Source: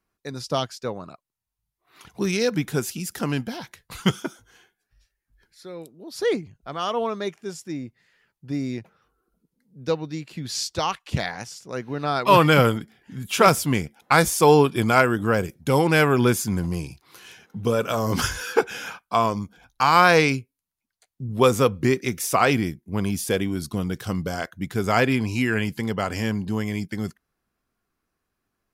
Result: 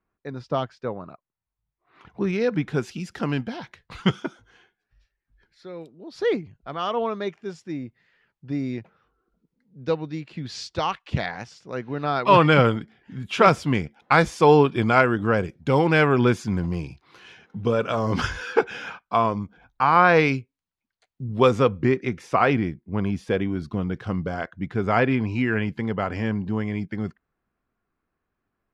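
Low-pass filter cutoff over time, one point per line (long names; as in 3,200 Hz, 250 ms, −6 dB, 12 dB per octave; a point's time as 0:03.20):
0:02.32 2,000 Hz
0:02.89 3,500 Hz
0:18.83 3,500 Hz
0:19.99 1,800 Hz
0:20.37 4,000 Hz
0:21.40 4,000 Hz
0:21.94 2,300 Hz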